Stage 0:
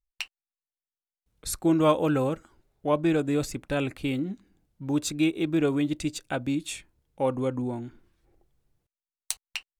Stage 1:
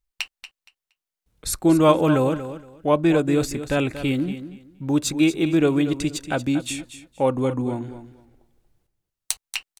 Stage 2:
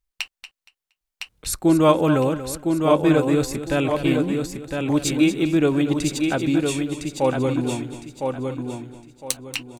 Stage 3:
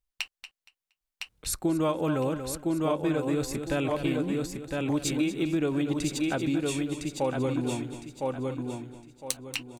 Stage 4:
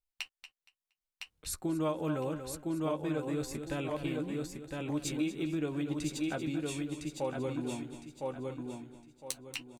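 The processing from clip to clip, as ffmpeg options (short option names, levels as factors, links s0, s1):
-af "aecho=1:1:234|468|702:0.251|0.0502|0.01,volume=1.88"
-af "aecho=1:1:1009|2018|3027|4036:0.562|0.157|0.0441|0.0123"
-af "acompressor=threshold=0.112:ratio=5,volume=0.596"
-filter_complex "[0:a]asplit=2[s0][s1];[s1]adelay=13,volume=0.355[s2];[s0][s2]amix=inputs=2:normalize=0,volume=0.422"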